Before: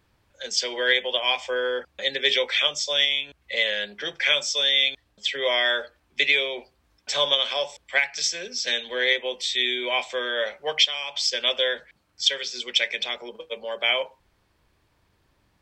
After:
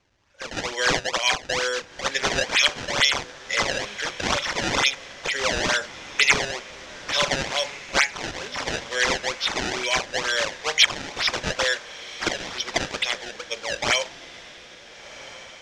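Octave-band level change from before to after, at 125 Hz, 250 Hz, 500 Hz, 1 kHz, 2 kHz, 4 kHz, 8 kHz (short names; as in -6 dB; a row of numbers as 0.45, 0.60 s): n/a, +7.0 dB, -1.0 dB, +6.0 dB, +1.5 dB, -2.0 dB, +5.5 dB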